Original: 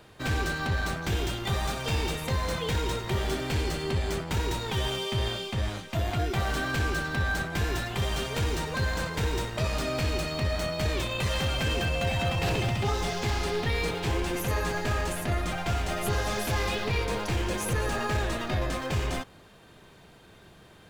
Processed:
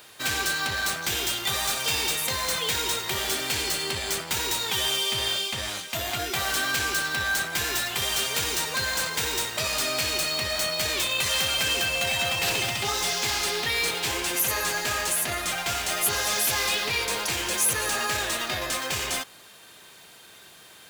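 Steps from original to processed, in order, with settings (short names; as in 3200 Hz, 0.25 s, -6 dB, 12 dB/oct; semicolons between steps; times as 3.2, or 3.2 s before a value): tilt +4 dB/oct; in parallel at -10 dB: wavefolder -24.5 dBFS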